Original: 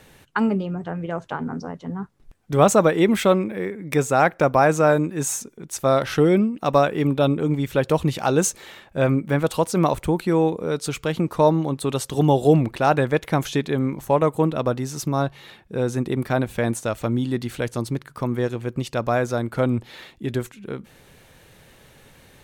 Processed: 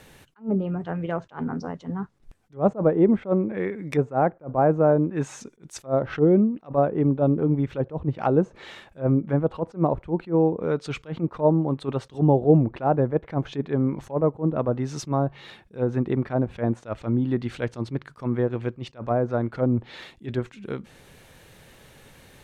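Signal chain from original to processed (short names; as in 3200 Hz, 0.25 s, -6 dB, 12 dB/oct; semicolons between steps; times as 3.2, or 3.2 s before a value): treble ducked by the level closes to 730 Hz, closed at -16.5 dBFS; attack slew limiter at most 290 dB/s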